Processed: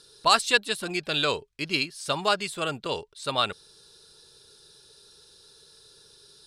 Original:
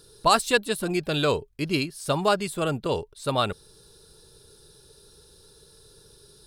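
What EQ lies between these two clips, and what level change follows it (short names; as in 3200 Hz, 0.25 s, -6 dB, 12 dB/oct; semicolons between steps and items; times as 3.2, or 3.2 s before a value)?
air absorption 61 m; tilt shelf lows -6.5 dB, about 1200 Hz; low shelf 87 Hz -9 dB; 0.0 dB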